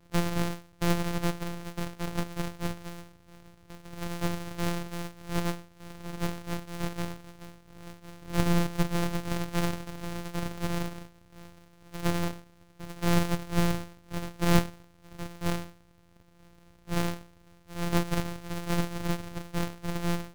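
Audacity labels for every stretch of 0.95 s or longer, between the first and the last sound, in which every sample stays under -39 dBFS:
15.700000	16.880000	silence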